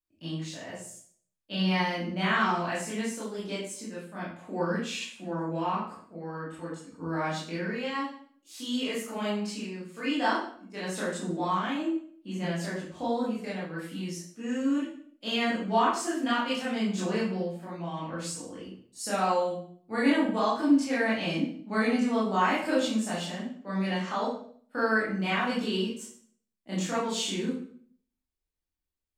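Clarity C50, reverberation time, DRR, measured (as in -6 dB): 2.5 dB, 0.55 s, -9.0 dB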